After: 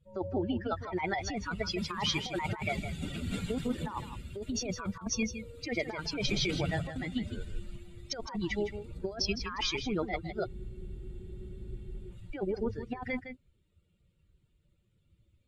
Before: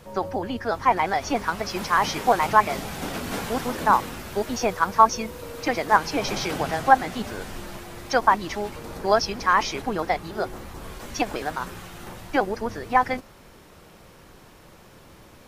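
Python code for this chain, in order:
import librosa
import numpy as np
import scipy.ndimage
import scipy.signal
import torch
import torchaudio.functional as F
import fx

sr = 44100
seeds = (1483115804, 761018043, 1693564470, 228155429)

p1 = fx.bin_expand(x, sr, power=2.0)
p2 = scipy.signal.sosfilt(scipy.signal.butter(2, 4400.0, 'lowpass', fs=sr, output='sos'), p1)
p3 = fx.over_compress(p2, sr, threshold_db=-35.0, ratio=-1.0)
p4 = p3 + fx.echo_single(p3, sr, ms=160, db=-10.0, dry=0)
y = fx.spec_freeze(p4, sr, seeds[0], at_s=10.49, hold_s=1.62)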